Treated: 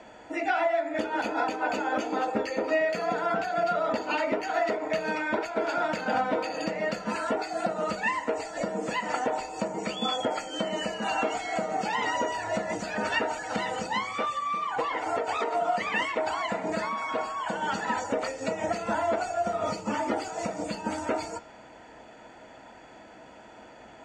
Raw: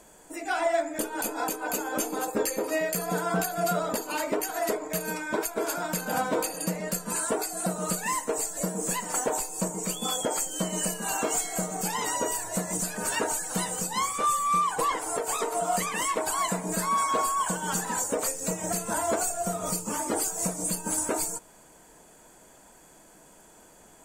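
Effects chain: high-pass 98 Hz 6 dB/octave; treble shelf 7.3 kHz -7.5 dB; de-hum 196.7 Hz, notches 38; compression, threshold -32 dBFS, peak gain reduction 10.5 dB; distance through air 160 m; reverberation RT60 0.10 s, pre-delay 3 ms, DRR 17 dB; trim +3.5 dB

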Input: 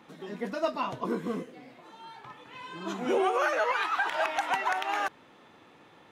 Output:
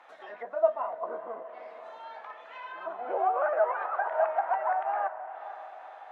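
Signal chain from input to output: peaking EQ 1.6 kHz +10.5 dB 1.4 oct; low-pass that closes with the level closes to 860 Hz, closed at -28.5 dBFS; resonant high-pass 660 Hz, resonance Q 4.9; on a send: echo that smears into a reverb 471 ms, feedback 54%, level -13 dB; on the sum: trim -8 dB

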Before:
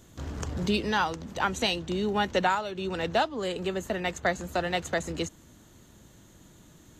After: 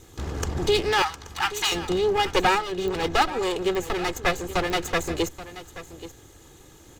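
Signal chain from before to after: comb filter that takes the minimum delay 2.4 ms; 1.02–1.72 s: steep high-pass 840 Hz; delay 829 ms -15 dB; clicks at 2.88/3.75/4.70 s, -25 dBFS; trim +6.5 dB

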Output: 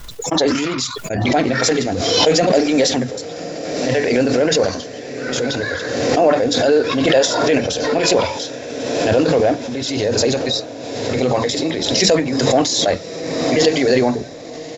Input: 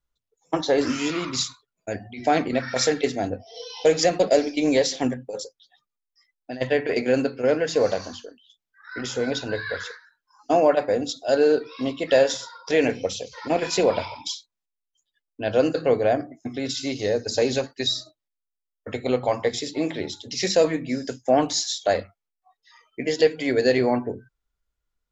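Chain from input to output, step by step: transient shaper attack -3 dB, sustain +7 dB; tempo 1.7×; on a send: echo that smears into a reverb 1134 ms, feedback 58%, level -13 dB; on the sum: swell ahead of each attack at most 33 dB/s; trim +5 dB

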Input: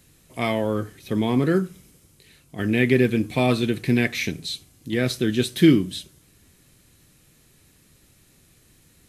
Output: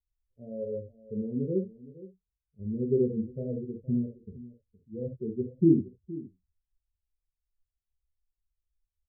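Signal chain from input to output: expander on every frequency bin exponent 2; rippled Chebyshev low-pass 560 Hz, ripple 3 dB; delay 467 ms -17.5 dB; on a send at -2.5 dB: reverberation, pre-delay 5 ms; on the sum: trim -4.5 dB

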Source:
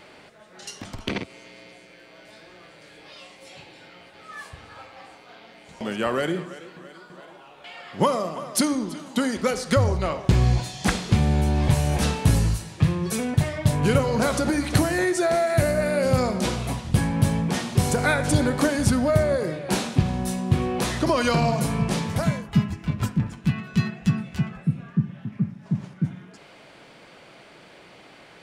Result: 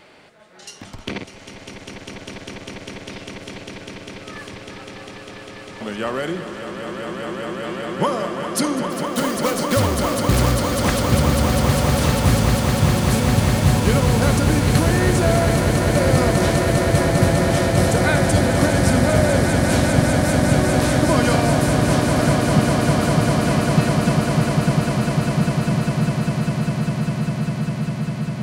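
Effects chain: 8.92–10.53 s: block-companded coder 3-bit; 15.55–15.96 s: level held to a coarse grid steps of 17 dB; echo with a slow build-up 200 ms, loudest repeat 8, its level -7 dB

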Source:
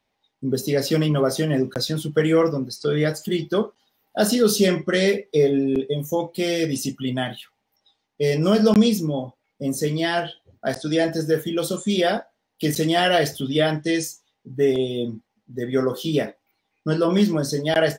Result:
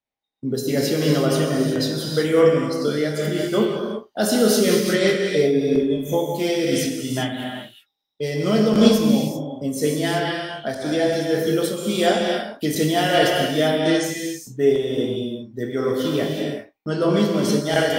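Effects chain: gate -41 dBFS, range -15 dB; gated-style reverb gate 410 ms flat, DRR -1 dB; random flutter of the level, depth 60%; trim +1.5 dB

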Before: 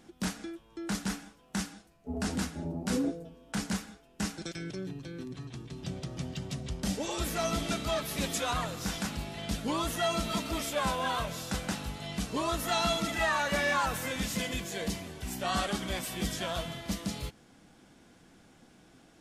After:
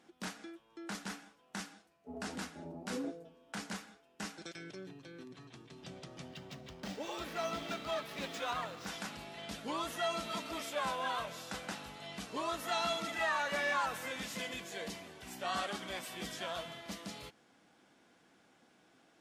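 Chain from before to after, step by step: 6.28–8.87 s: median filter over 5 samples; high-pass 520 Hz 6 dB/octave; treble shelf 5 kHz -8.5 dB; trim -3 dB

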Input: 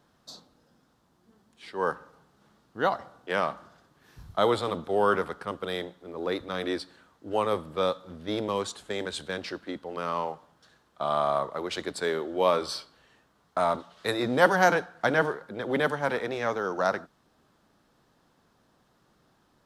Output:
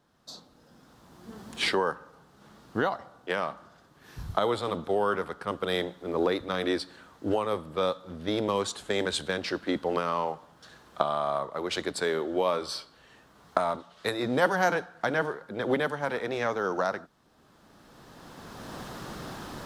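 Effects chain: recorder AGC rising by 16 dB/s; trim -4 dB

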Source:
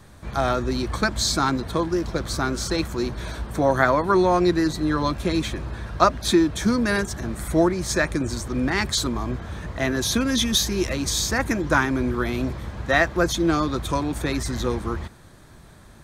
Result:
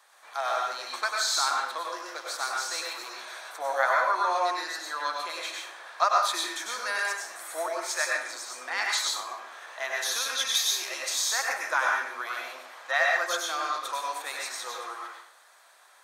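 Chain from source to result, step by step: high-pass 700 Hz 24 dB/octave; plate-style reverb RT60 0.6 s, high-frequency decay 0.85×, pre-delay 85 ms, DRR -1.5 dB; trim -5.5 dB

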